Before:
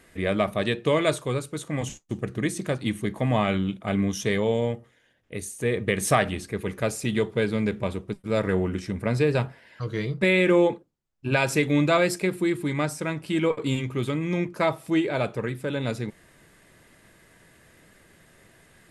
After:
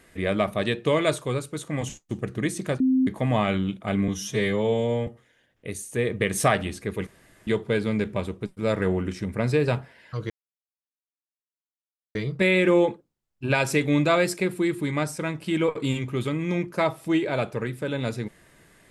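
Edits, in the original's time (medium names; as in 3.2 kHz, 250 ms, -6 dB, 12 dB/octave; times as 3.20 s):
2.80–3.07 s: bleep 260 Hz -17 dBFS
4.08–4.74 s: stretch 1.5×
6.74–7.14 s: room tone
9.97 s: insert silence 1.85 s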